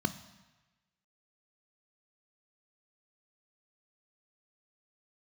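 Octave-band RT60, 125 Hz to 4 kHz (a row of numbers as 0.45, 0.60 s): 1.2, 0.95, 1.1, 1.2, 1.3, 1.1 s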